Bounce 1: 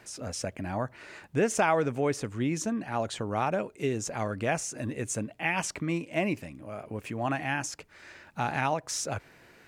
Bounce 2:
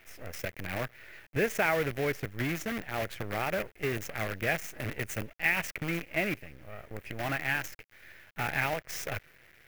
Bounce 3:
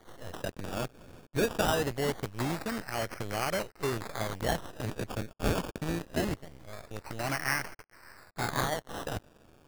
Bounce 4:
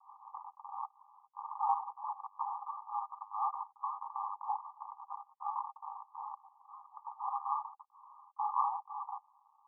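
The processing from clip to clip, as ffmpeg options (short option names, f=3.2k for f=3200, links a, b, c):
-af "acrusher=bits=6:dc=4:mix=0:aa=0.000001,equalizer=f=250:t=o:w=1:g=-7,equalizer=f=1k:t=o:w=1:g=-9,equalizer=f=2k:t=o:w=1:g=8,equalizer=f=4k:t=o:w=1:g=-6,equalizer=f=8k:t=o:w=1:g=-10"
-af "acrusher=samples=17:mix=1:aa=0.000001:lfo=1:lforange=10.2:lforate=0.23"
-af "asuperpass=centerf=980:order=20:qfactor=2.3,volume=5dB"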